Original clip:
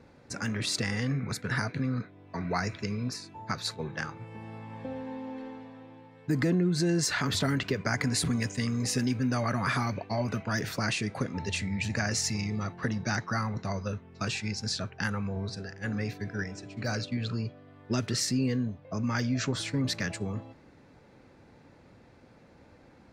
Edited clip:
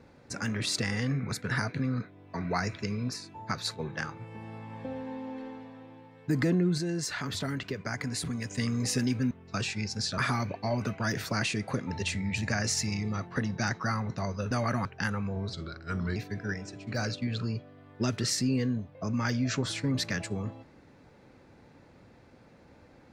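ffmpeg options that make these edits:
-filter_complex "[0:a]asplit=9[s0][s1][s2][s3][s4][s5][s6][s7][s8];[s0]atrim=end=6.782[s9];[s1]atrim=start=6.778:end=8.512,asetpts=PTS-STARTPTS,volume=0.531[s10];[s2]atrim=start=8.508:end=9.312[s11];[s3]atrim=start=13.978:end=14.852[s12];[s4]atrim=start=9.648:end=13.982[s13];[s5]atrim=start=9.308:end=9.652[s14];[s6]atrim=start=14.848:end=15.534[s15];[s7]atrim=start=15.53:end=16.06,asetpts=PTS-STARTPTS,asetrate=37044,aresample=44100[s16];[s8]atrim=start=16.056[s17];[s9][s10]acrossfade=d=0.004:c1=hsin:c2=hsin[s18];[s18][s11]acrossfade=d=0.004:c1=hsin:c2=hsin[s19];[s19][s12]acrossfade=d=0.004:c1=hsin:c2=hsin[s20];[s20][s13]acrossfade=d=0.004:c1=hsin:c2=hsin[s21];[s21][s14]acrossfade=d=0.004:c1=hsin:c2=hsin[s22];[s22][s15]acrossfade=d=0.004:c1=hsin:c2=hsin[s23];[s23][s16]acrossfade=d=0.004:c1=hsin:c2=hsin[s24];[s24][s17]acrossfade=d=0.004:c1=hsin:c2=hsin"

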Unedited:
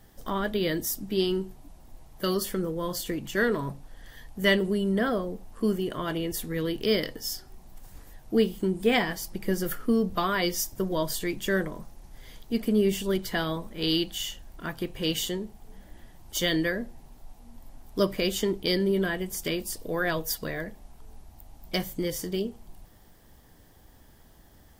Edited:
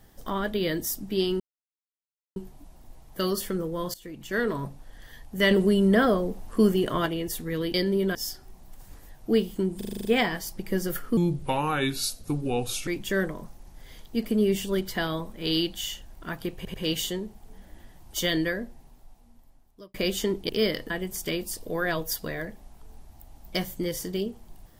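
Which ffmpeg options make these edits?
-filter_complex "[0:a]asplit=21[s0][s1][s2][s3][s4][s5][s6][s7][s8][s9][s10][s11][s12][s13][s14][s15][s16][s17][s18][s19][s20];[s0]atrim=end=1.4,asetpts=PTS-STARTPTS,afade=t=out:st=1.396:d=0.004:c=hsin,apad=pad_dur=0.96[s21];[s1]atrim=start=1.4:end=2.98,asetpts=PTS-STARTPTS,afade=t=in:d=0.004:c=hsin,afade=t=out:st=1.576:d=0.004:c=hsin:silence=0.125893[s22];[s2]atrim=start=2.98:end=4.552,asetpts=PTS-STARTPTS,afade=t=in:d=0.6:silence=0.125893[s23];[s3]atrim=start=4.548:end=6.102,asetpts=PTS-STARTPTS,volume=1.88[s24];[s4]atrim=start=6.098:end=6.782[s25];[s5]atrim=start=18.678:end=19.092[s26];[s6]atrim=start=7.188:end=8.852[s27];[s7]atrim=start=8.808:end=8.852[s28];[s8]atrim=start=8.808:end=8.852[s29];[s9]atrim=start=8.808:end=8.852[s30];[s10]atrim=start=8.808:end=8.852[s31];[s11]atrim=start=8.808:end=8.852[s32];[s12]atrim=start=8.808:end=8.852[s33];[s13]atrim=start=8.808:end=9.934[s34];[s14]atrim=start=9.93:end=11.24,asetpts=PTS-STARTPTS,asetrate=33957,aresample=44100,atrim=end_sample=75027,asetpts=PTS-STARTPTS[s35];[s15]atrim=start=11.236:end=15.022[s36];[s16]atrim=start=14.928:end=15.022[s37];[s17]atrim=start=14.928:end=18.13,asetpts=PTS-STARTPTS,afade=t=out:st=1.662:d=1.54[s38];[s18]atrim=start=18.13:end=18.682,asetpts=PTS-STARTPTS,afade=t=in:d=0.004:c=hsin[s39];[s19]atrim=start=6.778:end=7.192[s40];[s20]atrim=start=19.088[s41];[s21][s22][s23]concat=n=3:v=0:a=1[s42];[s42][s24]acrossfade=d=0.004:c1=hsin:c2=hsin[s43];[s43][s25]acrossfade=d=0.004:c1=hsin:c2=hsin[s44];[s44][s26]acrossfade=d=0.004:c1=hsin:c2=hsin[s45];[s45][s27]acrossfade=d=0.004:c1=hsin:c2=hsin[s46];[s46][s28]acrossfade=d=0.004:c1=hsin:c2=hsin[s47];[s47][s29]acrossfade=d=0.004:c1=hsin:c2=hsin[s48];[s48][s30]acrossfade=d=0.004:c1=hsin:c2=hsin[s49];[s49][s31]acrossfade=d=0.004:c1=hsin:c2=hsin[s50];[s50][s32]acrossfade=d=0.004:c1=hsin:c2=hsin[s51];[s51][s33]acrossfade=d=0.004:c1=hsin:c2=hsin[s52];[s52][s34]acrossfade=d=0.004:c1=hsin:c2=hsin[s53];[s53][s35]acrossfade=d=0.004:c1=hsin:c2=hsin[s54];[s54][s36]acrossfade=d=0.004:c1=hsin:c2=hsin[s55];[s55][s37]acrossfade=d=0.004:c1=hsin:c2=hsin[s56];[s38][s39]concat=n=2:v=0:a=1[s57];[s56][s57]acrossfade=d=0.004:c1=hsin:c2=hsin[s58];[s58][s40]acrossfade=d=0.004:c1=hsin:c2=hsin[s59];[s59][s41]acrossfade=d=0.004:c1=hsin:c2=hsin"

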